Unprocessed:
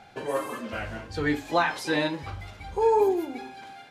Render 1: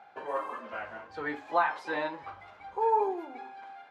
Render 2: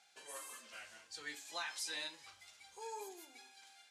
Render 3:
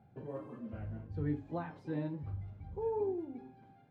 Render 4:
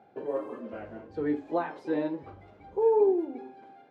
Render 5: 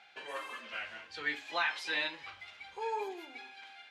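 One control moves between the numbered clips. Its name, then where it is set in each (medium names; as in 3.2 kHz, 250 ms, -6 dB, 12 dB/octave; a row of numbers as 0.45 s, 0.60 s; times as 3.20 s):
band-pass filter, frequency: 1 kHz, 7.9 kHz, 120 Hz, 380 Hz, 2.7 kHz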